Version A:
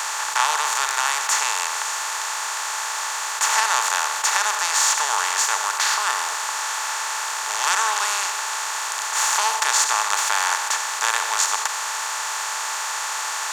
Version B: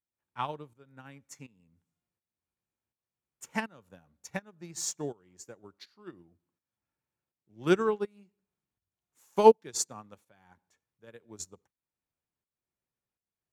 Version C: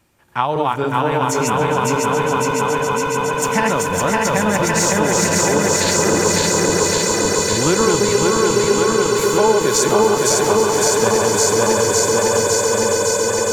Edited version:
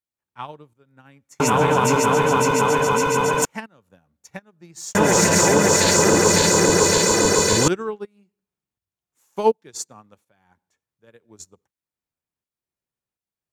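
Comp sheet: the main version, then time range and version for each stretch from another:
B
1.40–3.45 s: from C
4.95–7.68 s: from C
not used: A

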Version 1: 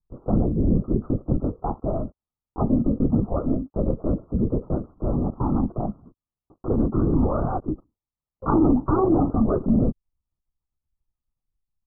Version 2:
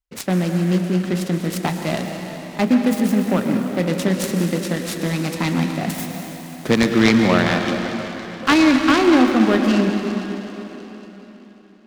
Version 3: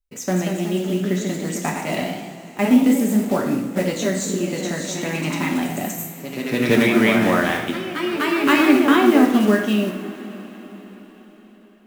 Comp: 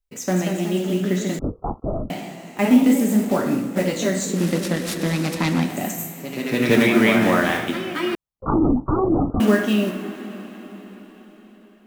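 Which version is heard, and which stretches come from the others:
3
1.39–2.10 s: from 1
4.36–5.69 s: from 2, crossfade 0.24 s
8.15–9.40 s: from 1

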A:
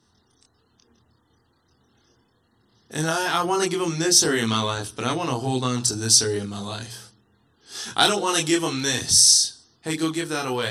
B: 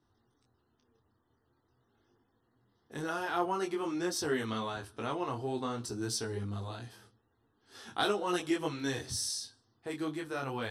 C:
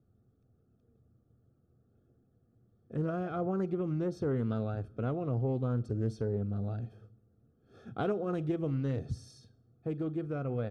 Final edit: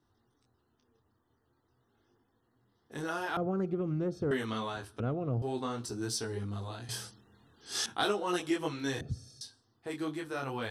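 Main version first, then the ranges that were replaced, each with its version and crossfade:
B
3.37–4.31 s: from C
5.00–5.42 s: from C
6.89–7.86 s: from A
9.01–9.41 s: from C

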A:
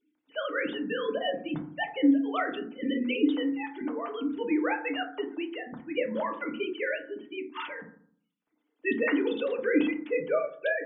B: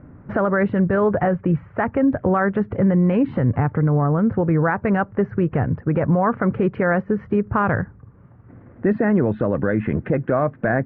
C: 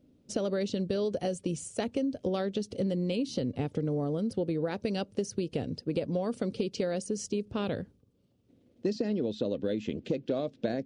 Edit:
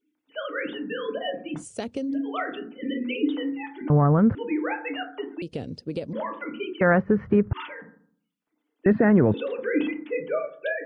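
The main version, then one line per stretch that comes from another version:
A
1.61–2.13 s: from C, crossfade 0.10 s
3.90–4.35 s: from B
5.42–6.13 s: from C
6.81–7.53 s: from B
8.86–9.34 s: from B

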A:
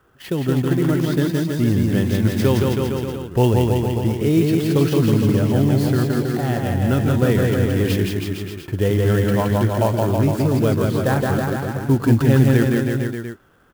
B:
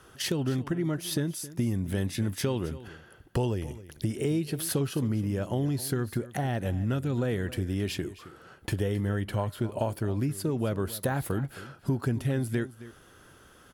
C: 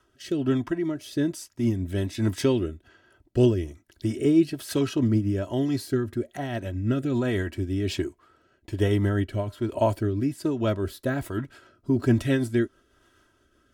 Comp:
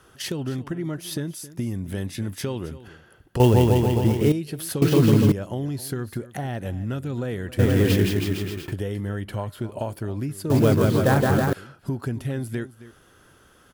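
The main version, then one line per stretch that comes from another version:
B
3.40–4.32 s: from A
4.82–5.32 s: from A
7.59–8.72 s: from A
10.50–11.53 s: from A
not used: C

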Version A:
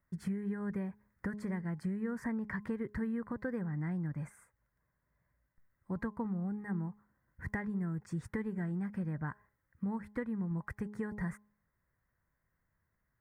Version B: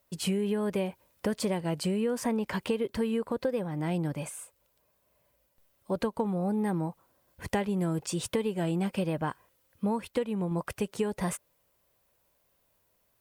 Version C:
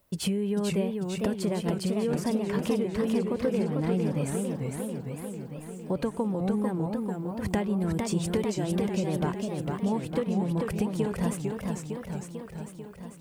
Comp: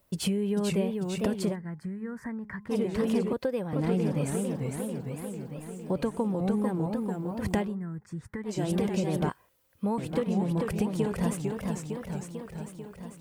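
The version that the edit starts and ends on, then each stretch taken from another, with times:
C
1.53–2.72 s: from A, crossfade 0.06 s
3.33–3.73 s: from B
7.69–8.51 s: from A, crossfade 0.16 s
9.29–9.98 s: from B

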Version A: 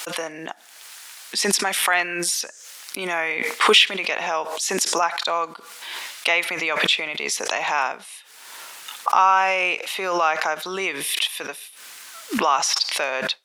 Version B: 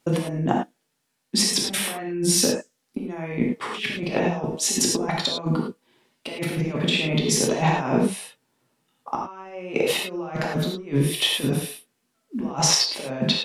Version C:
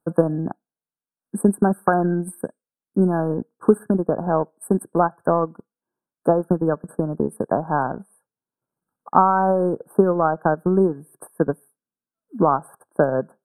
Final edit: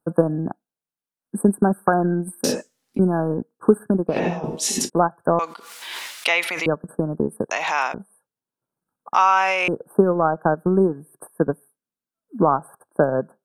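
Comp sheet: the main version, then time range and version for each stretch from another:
C
2.44–2.99 s: from B
4.13–4.85 s: from B, crossfade 0.10 s
5.39–6.66 s: from A
7.51–7.94 s: from A
9.14–9.68 s: from A

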